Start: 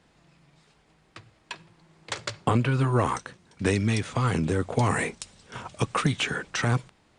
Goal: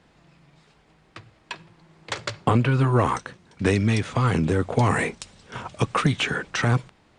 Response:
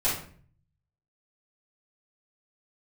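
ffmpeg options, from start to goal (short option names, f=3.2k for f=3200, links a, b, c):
-filter_complex "[0:a]highshelf=f=6.8k:g=-8.5,asplit=2[a][b];[b]asoftclip=type=tanh:threshold=-20dB,volume=-11.5dB[c];[a][c]amix=inputs=2:normalize=0,volume=2dB"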